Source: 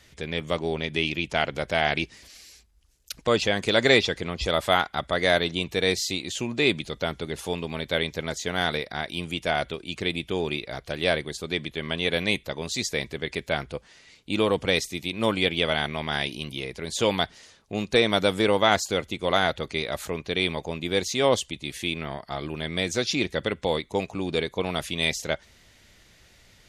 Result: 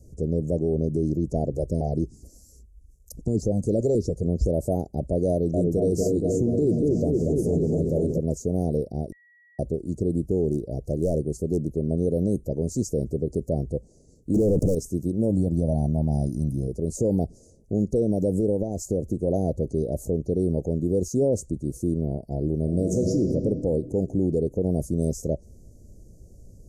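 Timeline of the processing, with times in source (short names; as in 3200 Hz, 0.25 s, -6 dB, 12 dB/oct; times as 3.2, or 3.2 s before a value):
1.52–4.25 stepped notch 7 Hz 210–1900 Hz
5.3–8.18 repeats that get brighter 0.236 s, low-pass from 750 Hz, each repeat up 1 oct, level -3 dB
9.12–9.59 bleep 1920 Hz -8 dBFS
10.29–11.71 overloaded stage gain 18.5 dB
14.34–14.75 sample leveller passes 5
15.3–16.68 comb 1.2 ms, depth 64%
18.39–19.27 compressor 5:1, threshold -24 dBFS
22.62–23.2 reverb throw, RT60 2.2 s, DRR 1.5 dB
whole clip: inverse Chebyshev band-stop 1100–3500 Hz, stop band 50 dB; tilt -2 dB/oct; limiter -19 dBFS; gain +4.5 dB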